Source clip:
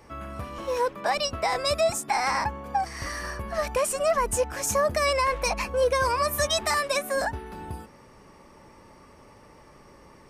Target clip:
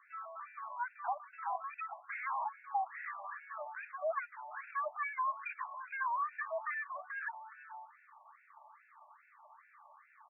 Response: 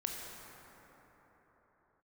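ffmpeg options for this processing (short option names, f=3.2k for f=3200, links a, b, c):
-filter_complex "[0:a]equalizer=f=250:w=0.63:g=-10,asplit=2[a][b];[b]acompressor=threshold=-39dB:ratio=6,volume=-1dB[c];[a][c]amix=inputs=2:normalize=0,aeval=exprs='clip(val(0),-1,0.0316)':c=same,highshelf=f=2.9k:g=-10,bandreject=f=2.8k:w=16,aecho=1:1:442:0.0944,afftfilt=real='re*between(b*sr/1024,810*pow(2000/810,0.5+0.5*sin(2*PI*2.4*pts/sr))/1.41,810*pow(2000/810,0.5+0.5*sin(2*PI*2.4*pts/sr))*1.41)':imag='im*between(b*sr/1024,810*pow(2000/810,0.5+0.5*sin(2*PI*2.4*pts/sr))/1.41,810*pow(2000/810,0.5+0.5*sin(2*PI*2.4*pts/sr))*1.41)':win_size=1024:overlap=0.75,volume=-4dB"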